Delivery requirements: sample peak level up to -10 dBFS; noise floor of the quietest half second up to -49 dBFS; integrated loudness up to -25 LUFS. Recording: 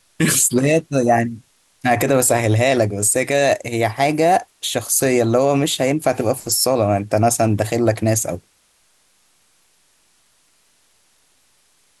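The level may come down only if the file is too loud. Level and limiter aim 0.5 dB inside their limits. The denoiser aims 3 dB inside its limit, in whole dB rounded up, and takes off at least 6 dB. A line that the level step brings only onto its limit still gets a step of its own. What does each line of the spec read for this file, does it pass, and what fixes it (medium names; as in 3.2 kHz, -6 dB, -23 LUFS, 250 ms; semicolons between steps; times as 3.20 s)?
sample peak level -5.5 dBFS: fail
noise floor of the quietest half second -59 dBFS: pass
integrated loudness -17.5 LUFS: fail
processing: trim -8 dB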